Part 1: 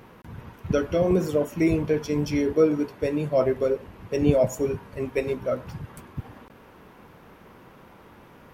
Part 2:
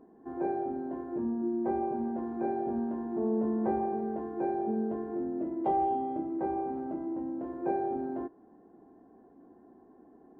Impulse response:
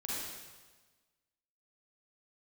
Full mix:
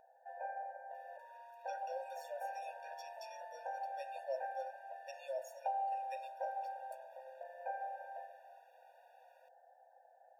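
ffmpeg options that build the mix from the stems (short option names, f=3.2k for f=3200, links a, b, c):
-filter_complex "[0:a]highpass=f=160:p=1,adelay=950,volume=-13dB[a];[1:a]volume=-0.5dB,asplit=2[b][c];[c]volume=-8dB[d];[2:a]atrim=start_sample=2205[e];[d][e]afir=irnorm=-1:irlink=0[f];[a][b][f]amix=inputs=3:normalize=0,aeval=exprs='val(0)+0.0158*(sin(2*PI*60*n/s)+sin(2*PI*2*60*n/s)/2+sin(2*PI*3*60*n/s)/3+sin(2*PI*4*60*n/s)/4+sin(2*PI*5*60*n/s)/5)':c=same,acrossover=split=88|1300[g][h][i];[g]acompressor=threshold=-53dB:ratio=4[j];[h]acompressor=threshold=-34dB:ratio=4[k];[i]acompressor=threshold=-48dB:ratio=4[l];[j][k][l]amix=inputs=3:normalize=0,afftfilt=real='re*eq(mod(floor(b*sr/1024/480),2),1)':imag='im*eq(mod(floor(b*sr/1024/480),2),1)':win_size=1024:overlap=0.75"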